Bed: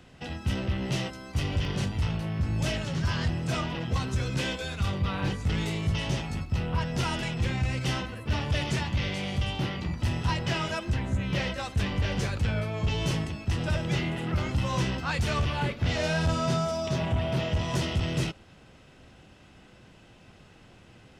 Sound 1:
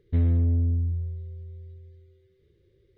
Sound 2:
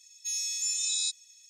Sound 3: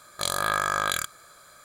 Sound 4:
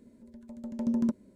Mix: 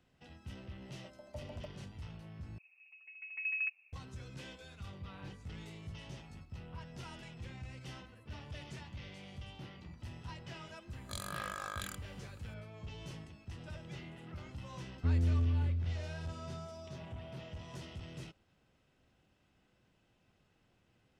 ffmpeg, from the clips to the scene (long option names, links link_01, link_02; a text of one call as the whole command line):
ffmpeg -i bed.wav -i cue0.wav -i cue1.wav -i cue2.wav -i cue3.wav -filter_complex "[4:a]asplit=2[link_01][link_02];[0:a]volume=-19dB[link_03];[link_01]highpass=frequency=640:width_type=q:width=7.8[link_04];[link_02]lowpass=frequency=2400:width_type=q:width=0.5098,lowpass=frequency=2400:width_type=q:width=0.6013,lowpass=frequency=2400:width_type=q:width=0.9,lowpass=frequency=2400:width_type=q:width=2.563,afreqshift=-2800[link_05];[3:a]bandreject=frequency=780:width=8.6[link_06];[link_03]asplit=2[link_07][link_08];[link_07]atrim=end=2.584[link_09];[link_05]atrim=end=1.35,asetpts=PTS-STARTPTS,volume=-9dB[link_10];[link_08]atrim=start=3.926[link_11];[link_04]atrim=end=1.35,asetpts=PTS-STARTPTS,volume=-15.5dB,afade=type=in:duration=0.004:curve=hsin,afade=type=out:start_time=1.346:duration=0.004:curve=hsin,adelay=550[link_12];[link_06]atrim=end=1.64,asetpts=PTS-STARTPTS,volume=-16.5dB,afade=type=in:duration=0.004:curve=hsin,afade=type=out:start_time=1.636:duration=0.004:curve=hsin,adelay=480690S[link_13];[1:a]atrim=end=2.97,asetpts=PTS-STARTPTS,volume=-8dB,afade=type=in:duration=0.004:curve=hsin,afade=type=out:start_time=2.966:duration=0.004:curve=hsin,adelay=14910[link_14];[link_09][link_10]acrossfade=duration=0.004:curve1=hsin:curve2=hsin[link_15];[link_15][link_11]acrossfade=duration=0.004:curve1=hsin:curve2=hsin[link_16];[link_16][link_12][link_13][link_14]amix=inputs=4:normalize=0" out.wav